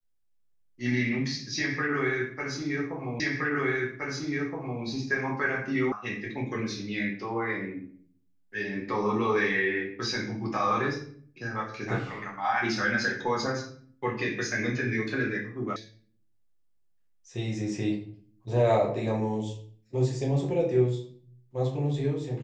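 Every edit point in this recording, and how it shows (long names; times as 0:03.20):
0:03.20: the same again, the last 1.62 s
0:05.92: cut off before it has died away
0:15.76: cut off before it has died away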